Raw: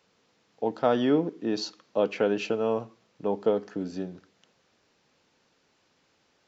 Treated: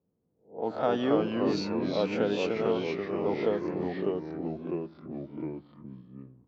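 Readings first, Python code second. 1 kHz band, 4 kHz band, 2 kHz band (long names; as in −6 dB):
−1.0 dB, −1.0 dB, 0.0 dB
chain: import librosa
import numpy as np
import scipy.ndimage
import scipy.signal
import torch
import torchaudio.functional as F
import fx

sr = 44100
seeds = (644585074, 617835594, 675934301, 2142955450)

y = fx.spec_swells(x, sr, rise_s=0.39)
y = fx.env_lowpass(y, sr, base_hz=310.0, full_db=-21.5)
y = fx.echo_pitch(y, sr, ms=176, semitones=-2, count=3, db_per_echo=-3.0)
y = y * 10.0 ** (-4.5 / 20.0)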